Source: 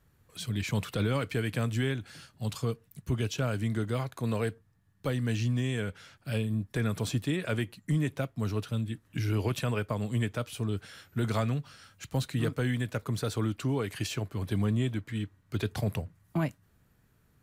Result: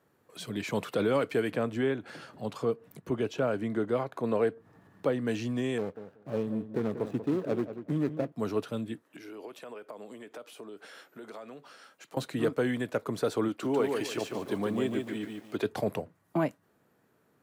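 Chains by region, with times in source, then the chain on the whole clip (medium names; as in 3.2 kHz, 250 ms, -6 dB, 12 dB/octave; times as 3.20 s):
1.51–5.27 s: treble shelf 4 kHz -10 dB + upward compressor, threshold -36 dBFS
5.78–8.32 s: median filter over 41 samples + filtered feedback delay 187 ms, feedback 17%, low-pass 2.3 kHz, level -10.5 dB
9.02–12.17 s: high-pass 290 Hz + compression 12:1, threshold -44 dBFS
13.48–15.65 s: bass shelf 110 Hz -11.5 dB + bit-crushed delay 146 ms, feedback 35%, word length 9-bit, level -4 dB
whole clip: high-pass 390 Hz 12 dB/octave; tilt shelf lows +7.5 dB, about 1.1 kHz; trim +3.5 dB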